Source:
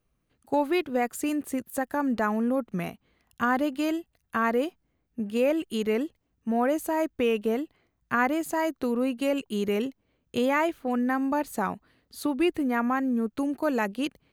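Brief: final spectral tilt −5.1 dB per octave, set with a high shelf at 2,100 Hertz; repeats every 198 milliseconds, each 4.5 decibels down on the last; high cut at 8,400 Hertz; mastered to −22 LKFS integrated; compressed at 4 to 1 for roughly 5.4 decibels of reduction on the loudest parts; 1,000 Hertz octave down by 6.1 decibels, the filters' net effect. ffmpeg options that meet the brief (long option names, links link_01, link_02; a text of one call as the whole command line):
ffmpeg -i in.wav -af "lowpass=8400,equalizer=frequency=1000:width_type=o:gain=-7,highshelf=frequency=2100:gain=-5,acompressor=threshold=-28dB:ratio=4,aecho=1:1:198|396|594|792|990|1188|1386|1584|1782:0.596|0.357|0.214|0.129|0.0772|0.0463|0.0278|0.0167|0.01,volume=9.5dB" out.wav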